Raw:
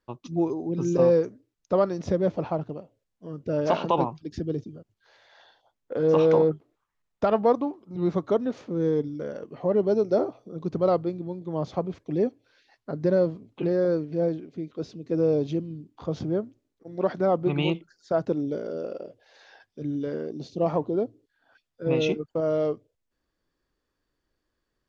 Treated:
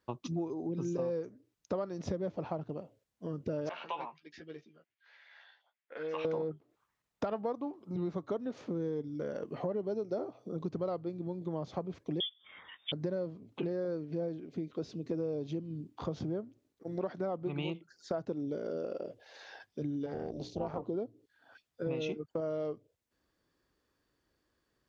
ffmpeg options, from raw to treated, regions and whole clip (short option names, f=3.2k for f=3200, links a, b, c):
-filter_complex "[0:a]asettb=1/sr,asplit=3[a][b][c];[a]atrim=end=3.694[d];[b]atrim=start=3.69:end=6.25,asetpts=PTS-STARTPTS,afade=t=in:d=0.004:c=qsin,afade=t=out:st=2.556:d=0.004:c=qsin,bandpass=f=2.1k:t=q:w=2.2,asplit=2[e][f];[f]adelay=13,volume=-4.5dB[g];[e][g]amix=inputs=2:normalize=0,atrim=end_sample=112896[h];[c]atrim=start=6.246[i];[d][h]acrossfade=d=0.004:c1=hsin:c2=qsin[j];[j][i]acrossfade=d=0.004:c1=qsin:c2=hsin,asettb=1/sr,asplit=3[k][l][m];[k]atrim=end=12.204[n];[l]atrim=start=12.2:end=12.92,asetpts=PTS-STARTPTS,afade=t=in:d=0.004:c=qsin,afade=t=out:st=0.716:d=0.004:c=qsin,acompressor=mode=upward:threshold=-42dB:ratio=2.5:attack=3.2:release=140:knee=2.83:detection=peak,lowpass=f=3.1k:t=q:w=0.5098,lowpass=f=3.1k:t=q:w=0.6013,lowpass=f=3.1k:t=q:w=0.9,lowpass=f=3.1k:t=q:w=2.563,afreqshift=-3700[o];[m]atrim=start=12.916[p];[n][o]acrossfade=d=0.004:c1=hsin:c2=qsin[q];[q][p]acrossfade=d=0.004:c1=qsin:c2=hsin,asettb=1/sr,asplit=3[r][s][t];[r]atrim=end=20.064[u];[s]atrim=start=20.06:end=20.83,asetpts=PTS-STARTPTS,afade=t=in:d=0.004:c=qsin,afade=t=out:st=0.766:d=0.004:c=qsin,tremolo=f=280:d=0.857,bandreject=f=60:t=h:w=6,bandreject=f=120:t=h:w=6,bandreject=f=180:t=h:w=6,bandreject=f=240:t=h:w=6,bandreject=f=300:t=h:w=6,bandreject=f=360:t=h:w=6,bandreject=f=420:t=h:w=6,bandreject=f=480:t=h:w=6[v];[t]atrim=start=20.826[w];[u][v]acrossfade=d=0.004:c1=hsin:c2=qsin[x];[x][w]acrossfade=d=0.004:c1=qsin:c2=hsin,highpass=55,acompressor=threshold=-36dB:ratio=5,volume=2dB"